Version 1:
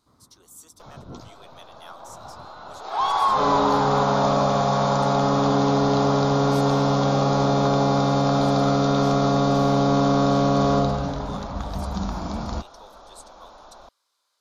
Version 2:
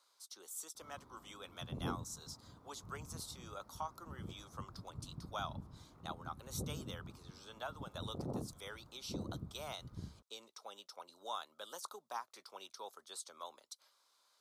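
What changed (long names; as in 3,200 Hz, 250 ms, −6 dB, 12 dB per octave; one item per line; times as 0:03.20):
first sound: entry +0.75 s
second sound: muted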